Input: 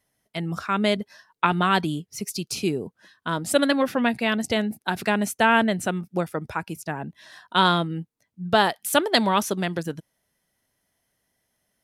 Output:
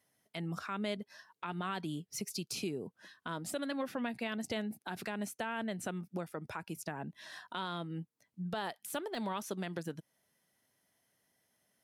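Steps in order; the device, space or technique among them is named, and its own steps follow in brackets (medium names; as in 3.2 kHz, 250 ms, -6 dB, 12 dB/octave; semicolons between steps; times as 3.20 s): podcast mastering chain (high-pass 110 Hz; de-esser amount 50%; compression 2.5:1, threshold -36 dBFS, peak gain reduction 15 dB; peak limiter -24.5 dBFS, peak gain reduction 9 dB; trim -2 dB; MP3 128 kbps 44.1 kHz)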